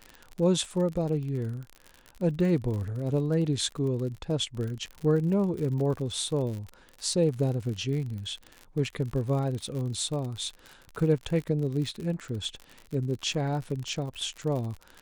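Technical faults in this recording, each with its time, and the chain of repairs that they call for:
crackle 57/s -34 dBFS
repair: de-click

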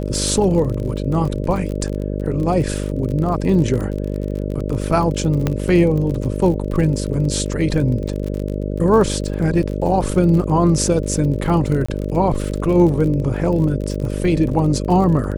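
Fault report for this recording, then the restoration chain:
buzz 50 Hz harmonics 12 -23 dBFS
crackle 38/s -25 dBFS
5.47 pop -6 dBFS
11.86–11.88 gap 25 ms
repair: de-click; de-hum 50 Hz, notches 12; interpolate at 11.86, 25 ms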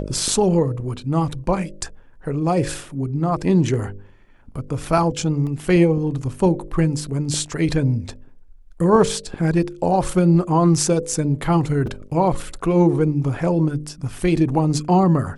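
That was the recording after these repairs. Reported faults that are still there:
5.47 pop

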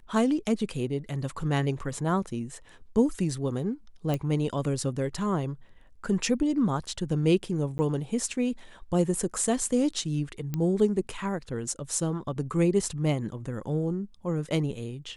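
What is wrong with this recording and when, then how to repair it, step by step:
4.14 pop -16 dBFS
7.78–7.79 gap 10 ms
10.54 pop -17 dBFS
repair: de-click; interpolate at 7.78, 10 ms

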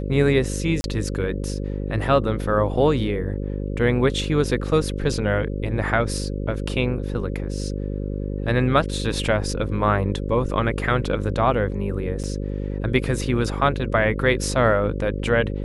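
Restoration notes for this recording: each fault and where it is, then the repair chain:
buzz 50 Hz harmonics 11 -27 dBFS
0.81–0.84 gap 31 ms
12.23–12.24 gap 7.2 ms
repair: de-hum 50 Hz, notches 11; interpolate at 0.81, 31 ms; interpolate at 12.23, 7.2 ms

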